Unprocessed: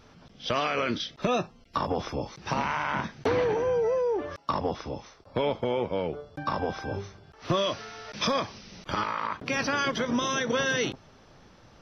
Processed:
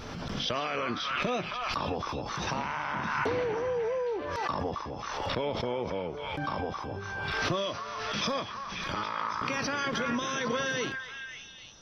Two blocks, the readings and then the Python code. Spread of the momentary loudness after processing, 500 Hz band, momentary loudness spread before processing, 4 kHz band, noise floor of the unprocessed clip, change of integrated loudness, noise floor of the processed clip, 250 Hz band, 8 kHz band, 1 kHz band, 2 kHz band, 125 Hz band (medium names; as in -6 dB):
7 LU, -4.5 dB, 11 LU, -1.0 dB, -56 dBFS, -3.0 dB, -43 dBFS, -3.5 dB, no reading, -1.5 dB, -0.5 dB, -2.5 dB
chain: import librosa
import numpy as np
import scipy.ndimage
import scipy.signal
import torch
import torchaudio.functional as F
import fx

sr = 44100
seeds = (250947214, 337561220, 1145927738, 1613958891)

y = fx.echo_stepped(x, sr, ms=270, hz=1300.0, octaves=0.7, feedback_pct=70, wet_db=-3.5)
y = fx.pre_swell(y, sr, db_per_s=24.0)
y = F.gain(torch.from_numpy(y), -5.0).numpy()